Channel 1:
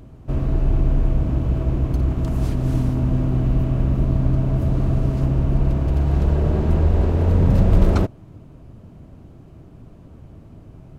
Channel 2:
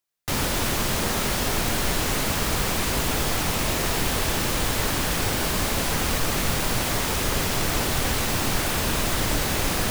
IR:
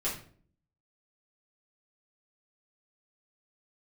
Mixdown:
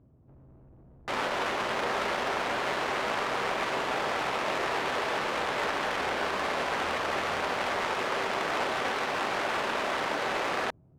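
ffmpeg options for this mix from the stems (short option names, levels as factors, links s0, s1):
-filter_complex "[0:a]highpass=73,acompressor=threshold=0.0316:ratio=3,asoftclip=type=tanh:threshold=0.0119,volume=0.2[s0];[1:a]highpass=520,adelay=800,volume=1.06,asplit=2[s1][s2];[s2]volume=0.188[s3];[2:a]atrim=start_sample=2205[s4];[s3][s4]afir=irnorm=-1:irlink=0[s5];[s0][s1][s5]amix=inputs=3:normalize=0,adynamicsmooth=sensitivity=1:basefreq=1400"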